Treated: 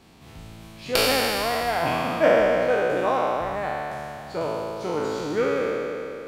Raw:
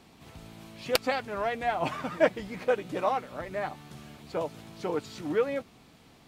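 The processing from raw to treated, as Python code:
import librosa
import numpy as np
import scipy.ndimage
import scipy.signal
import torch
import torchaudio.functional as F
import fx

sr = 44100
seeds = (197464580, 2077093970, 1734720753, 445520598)

y = fx.spec_trails(x, sr, decay_s=2.86)
y = fx.low_shelf(y, sr, hz=84.0, db=5.5)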